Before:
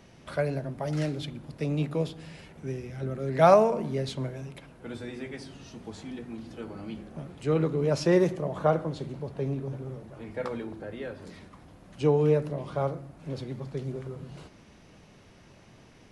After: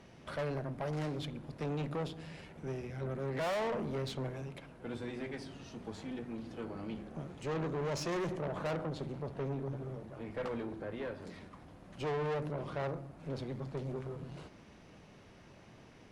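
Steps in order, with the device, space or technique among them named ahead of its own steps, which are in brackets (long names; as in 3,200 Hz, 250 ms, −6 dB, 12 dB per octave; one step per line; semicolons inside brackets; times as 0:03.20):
tube preamp driven hard (tube saturation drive 33 dB, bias 0.5; low-shelf EQ 190 Hz −3 dB; high-shelf EQ 4,000 Hz −6.5 dB)
0:07.15–0:08.17: parametric band 6,500 Hz +6 dB 0.37 octaves
level +1 dB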